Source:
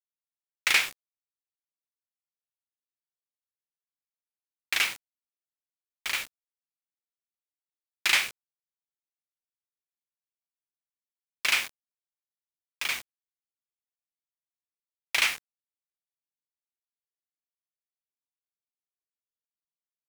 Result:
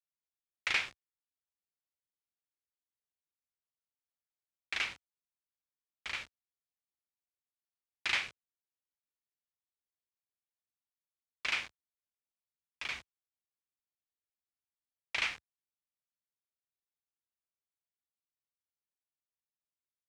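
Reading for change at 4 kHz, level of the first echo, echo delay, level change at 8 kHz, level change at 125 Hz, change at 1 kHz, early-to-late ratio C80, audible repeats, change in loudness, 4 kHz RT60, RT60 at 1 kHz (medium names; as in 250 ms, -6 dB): -9.5 dB, no echo, no echo, -16.0 dB, no reading, -7.5 dB, no reverb, no echo, -9.0 dB, no reverb, no reverb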